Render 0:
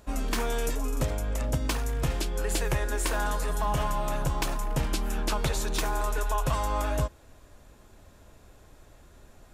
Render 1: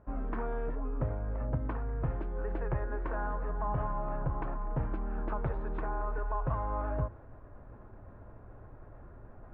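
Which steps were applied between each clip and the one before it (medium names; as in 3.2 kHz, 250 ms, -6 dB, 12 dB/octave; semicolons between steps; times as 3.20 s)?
low-pass 1.5 kHz 24 dB/octave; peaking EQ 110 Hz +8.5 dB 0.23 oct; reverse; upward compressor, threshold -34 dBFS; reverse; trim -5.5 dB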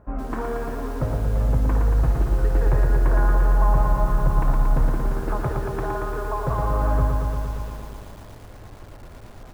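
delay 573 ms -22.5 dB; bit-crushed delay 115 ms, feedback 80%, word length 9-bit, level -4 dB; trim +7.5 dB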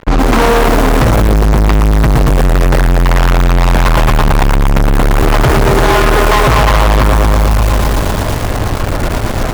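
fuzz box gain 38 dB, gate -47 dBFS; trim +6.5 dB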